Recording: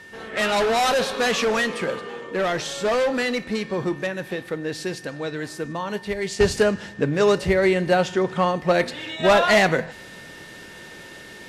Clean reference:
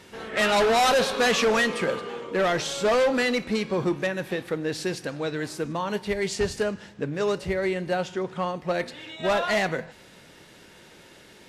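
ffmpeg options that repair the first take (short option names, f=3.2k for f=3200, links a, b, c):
-af "bandreject=f=1.8k:w=30,asetnsamples=n=441:p=0,asendcmd='6.4 volume volume -7.5dB',volume=0dB"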